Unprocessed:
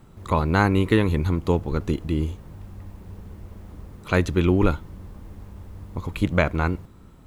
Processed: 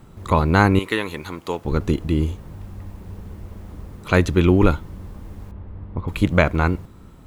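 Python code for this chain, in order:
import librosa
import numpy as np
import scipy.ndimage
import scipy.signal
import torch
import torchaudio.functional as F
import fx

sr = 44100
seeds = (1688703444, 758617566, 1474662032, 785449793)

y = fx.highpass(x, sr, hz=970.0, slope=6, at=(0.79, 1.65))
y = fx.air_absorb(y, sr, metres=460.0, at=(5.51, 6.08))
y = y * 10.0 ** (4.0 / 20.0)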